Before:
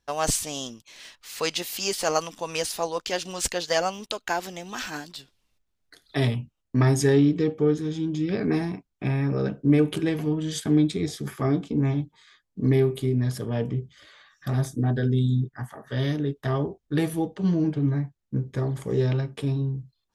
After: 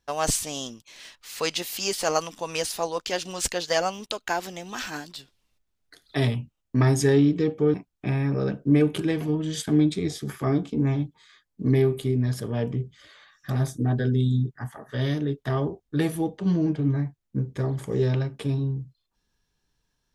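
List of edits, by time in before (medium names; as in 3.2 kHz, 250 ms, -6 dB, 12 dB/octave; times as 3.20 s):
7.74–8.72 s: delete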